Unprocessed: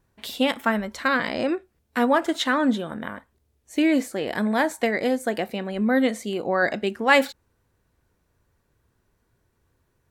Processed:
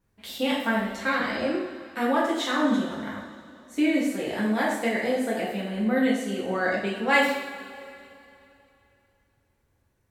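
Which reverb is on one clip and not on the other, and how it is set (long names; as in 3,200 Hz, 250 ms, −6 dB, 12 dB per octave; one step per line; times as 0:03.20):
coupled-rooms reverb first 0.66 s, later 2.9 s, from −15 dB, DRR −6.5 dB
level −9.5 dB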